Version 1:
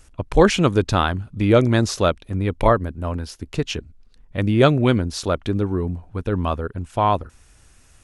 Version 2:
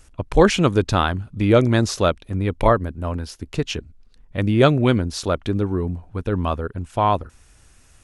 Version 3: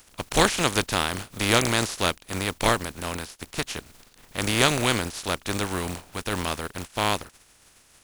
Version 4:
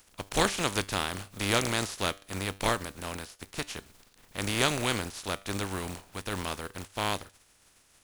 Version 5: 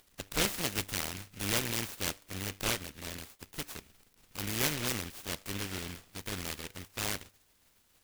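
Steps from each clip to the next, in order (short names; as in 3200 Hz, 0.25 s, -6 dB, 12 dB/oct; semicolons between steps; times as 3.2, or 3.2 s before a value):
nothing audible
spectral contrast lowered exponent 0.36; gain -6 dB
resonator 98 Hz, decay 0.4 s, harmonics all, mix 40%; gain -2.5 dB
noise-modulated delay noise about 2200 Hz, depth 0.33 ms; gain -4.5 dB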